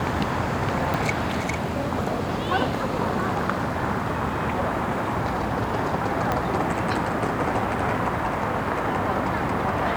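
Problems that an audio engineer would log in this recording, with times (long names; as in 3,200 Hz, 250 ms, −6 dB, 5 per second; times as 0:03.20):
0:00.94: click
0:06.32: click −10 dBFS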